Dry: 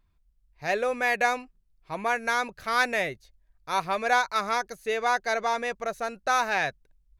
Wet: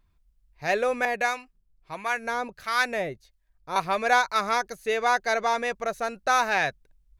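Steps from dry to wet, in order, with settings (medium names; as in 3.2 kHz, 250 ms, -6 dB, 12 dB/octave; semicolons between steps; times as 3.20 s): 1.05–3.76 s: harmonic tremolo 1.5 Hz, depth 70%, crossover 960 Hz; trim +2 dB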